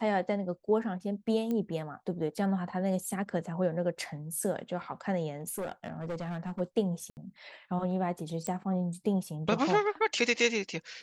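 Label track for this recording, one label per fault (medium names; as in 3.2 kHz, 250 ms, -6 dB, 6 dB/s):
1.510000	1.510000	pop -22 dBFS
5.410000	6.610000	clipped -31.5 dBFS
7.100000	7.170000	dropout 69 ms
8.470000	8.470000	pop -20 dBFS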